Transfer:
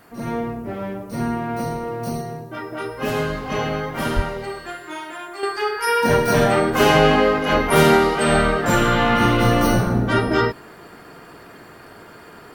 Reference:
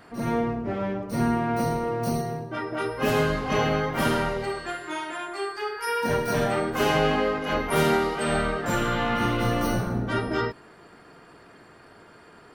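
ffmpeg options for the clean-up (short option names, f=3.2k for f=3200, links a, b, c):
-filter_complex "[0:a]asplit=3[a][b][c];[a]afade=t=out:st=4.15:d=0.02[d];[b]highpass=f=140:w=0.5412,highpass=f=140:w=1.3066,afade=t=in:st=4.15:d=0.02,afade=t=out:st=4.27:d=0.02[e];[c]afade=t=in:st=4.27:d=0.02[f];[d][e][f]amix=inputs=3:normalize=0,agate=range=-21dB:threshold=-34dB,asetnsamples=n=441:p=0,asendcmd='5.43 volume volume -8dB',volume=0dB"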